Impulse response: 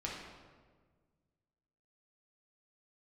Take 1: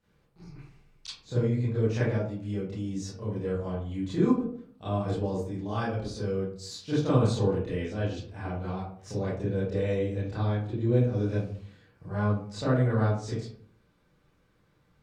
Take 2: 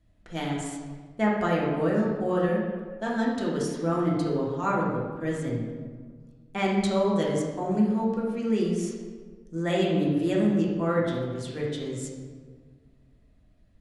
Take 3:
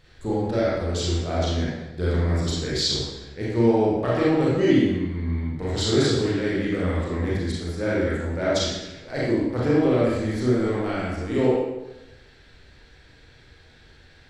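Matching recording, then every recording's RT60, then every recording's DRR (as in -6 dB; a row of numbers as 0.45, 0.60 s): 2; 0.55, 1.5, 1.0 s; -10.5, -4.5, -7.0 dB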